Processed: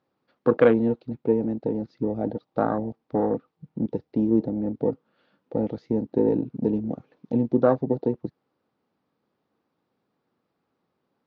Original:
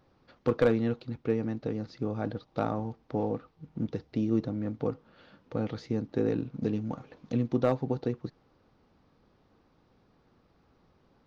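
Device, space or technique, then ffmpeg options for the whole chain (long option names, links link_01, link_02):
over-cleaned archive recording: -af "highpass=170,lowpass=5500,afwtdn=0.02,volume=7.5dB"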